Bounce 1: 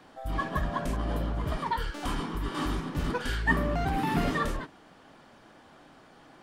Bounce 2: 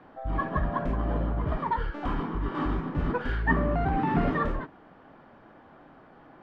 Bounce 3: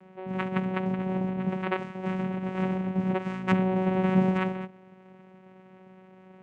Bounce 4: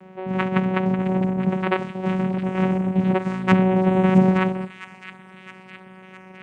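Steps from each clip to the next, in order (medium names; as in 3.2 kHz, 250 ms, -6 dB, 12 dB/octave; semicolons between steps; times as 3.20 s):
low-pass 1.7 kHz 12 dB/octave; trim +2.5 dB
vocoder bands 4, saw 187 Hz; trim +2.5 dB
feedback echo behind a high-pass 663 ms, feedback 62%, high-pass 1.9 kHz, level -7.5 dB; trim +7.5 dB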